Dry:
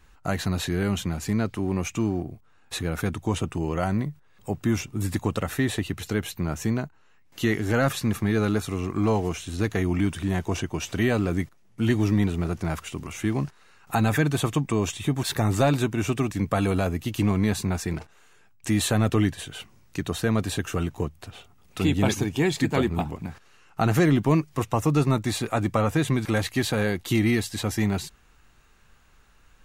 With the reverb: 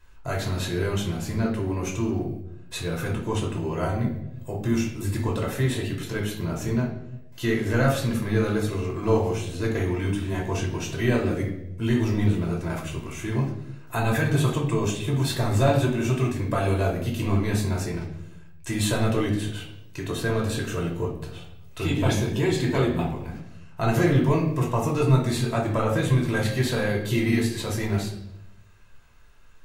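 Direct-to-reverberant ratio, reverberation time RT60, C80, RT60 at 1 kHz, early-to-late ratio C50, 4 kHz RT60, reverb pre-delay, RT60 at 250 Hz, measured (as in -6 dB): -2.0 dB, 0.85 s, 9.0 dB, 0.70 s, 6.0 dB, 0.65 s, 3 ms, 1.1 s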